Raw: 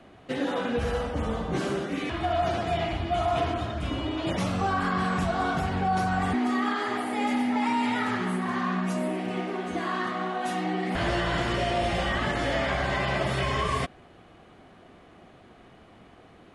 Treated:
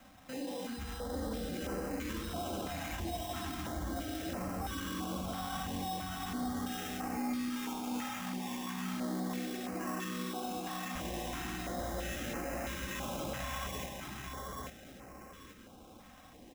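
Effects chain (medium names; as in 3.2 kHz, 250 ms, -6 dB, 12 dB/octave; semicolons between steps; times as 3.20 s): comb 3.8 ms, depth 53%; peak limiter -27 dBFS, peak gain reduction 13 dB; sample-rate reducer 4.5 kHz, jitter 0%; on a send: feedback delay 838 ms, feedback 28%, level -3 dB; on the sum: step-sequenced notch 3 Hz 390–3500 Hz; trim -4.5 dB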